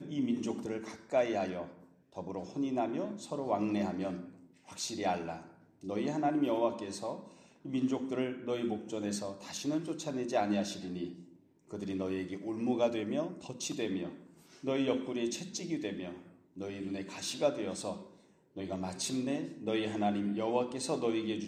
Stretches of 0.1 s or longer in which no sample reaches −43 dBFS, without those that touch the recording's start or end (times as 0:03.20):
0:00.96–0:01.12
0:01.69–0:02.16
0:04.29–0:04.69
0:05.42–0:05.83
0:07.27–0:07.65
0:11.20–0:11.71
0:14.16–0:14.64
0:16.22–0:16.57
0:18.03–0:18.57